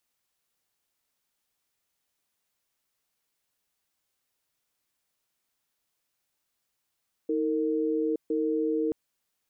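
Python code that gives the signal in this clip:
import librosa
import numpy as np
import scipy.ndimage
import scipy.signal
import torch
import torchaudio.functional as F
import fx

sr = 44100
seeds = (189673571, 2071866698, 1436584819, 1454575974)

y = fx.cadence(sr, length_s=1.63, low_hz=316.0, high_hz=457.0, on_s=0.87, off_s=0.14, level_db=-27.0)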